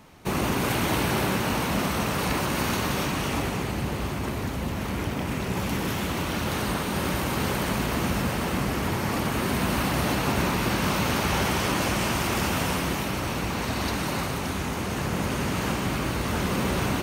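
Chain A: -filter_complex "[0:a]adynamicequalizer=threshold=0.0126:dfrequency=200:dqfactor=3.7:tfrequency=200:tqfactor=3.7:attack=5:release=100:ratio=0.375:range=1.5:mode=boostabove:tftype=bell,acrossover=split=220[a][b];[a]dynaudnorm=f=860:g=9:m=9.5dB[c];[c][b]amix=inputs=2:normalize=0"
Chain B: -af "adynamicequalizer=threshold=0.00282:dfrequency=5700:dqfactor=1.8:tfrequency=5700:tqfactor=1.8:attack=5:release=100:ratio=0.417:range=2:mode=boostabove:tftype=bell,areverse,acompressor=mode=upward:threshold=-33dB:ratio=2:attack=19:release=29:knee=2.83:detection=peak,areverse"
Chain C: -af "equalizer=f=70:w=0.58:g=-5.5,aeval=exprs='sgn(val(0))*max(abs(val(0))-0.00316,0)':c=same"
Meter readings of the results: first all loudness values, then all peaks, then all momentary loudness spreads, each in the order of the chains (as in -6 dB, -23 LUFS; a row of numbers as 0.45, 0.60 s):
-22.5, -26.0, -28.0 LUFS; -7.0, -11.0, -12.0 dBFS; 6, 5, 6 LU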